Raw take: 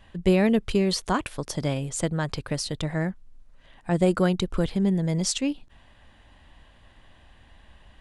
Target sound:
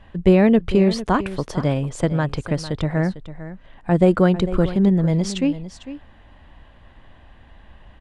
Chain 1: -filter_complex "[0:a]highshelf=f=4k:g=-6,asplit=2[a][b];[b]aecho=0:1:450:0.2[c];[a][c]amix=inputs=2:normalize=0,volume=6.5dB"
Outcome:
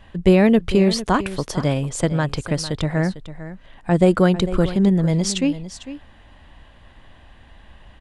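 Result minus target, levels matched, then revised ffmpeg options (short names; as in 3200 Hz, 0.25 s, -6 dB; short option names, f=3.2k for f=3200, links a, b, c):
8000 Hz band +7.5 dB
-filter_complex "[0:a]highshelf=f=4k:g=-16.5,asplit=2[a][b];[b]aecho=0:1:450:0.2[c];[a][c]amix=inputs=2:normalize=0,volume=6.5dB"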